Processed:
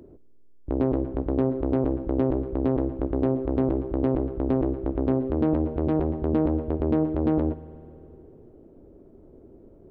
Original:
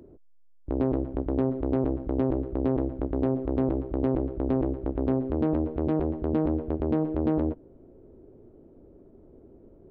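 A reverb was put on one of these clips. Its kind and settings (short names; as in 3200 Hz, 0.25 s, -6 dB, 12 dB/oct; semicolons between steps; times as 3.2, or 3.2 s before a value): spring tank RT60 2.7 s, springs 51 ms, chirp 20 ms, DRR 16.5 dB; gain +2 dB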